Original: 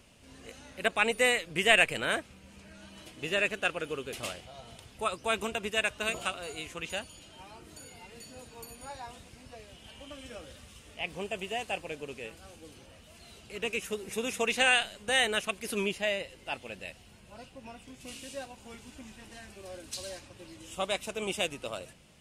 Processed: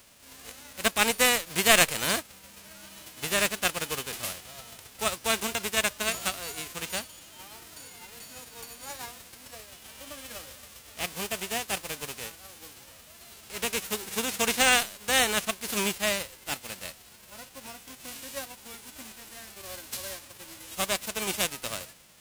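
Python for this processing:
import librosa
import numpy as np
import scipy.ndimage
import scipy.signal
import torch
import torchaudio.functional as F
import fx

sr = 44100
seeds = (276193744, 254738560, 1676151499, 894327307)

y = fx.envelope_flatten(x, sr, power=0.3)
y = fx.quant_float(y, sr, bits=2)
y = F.gain(torch.from_numpy(y), 3.0).numpy()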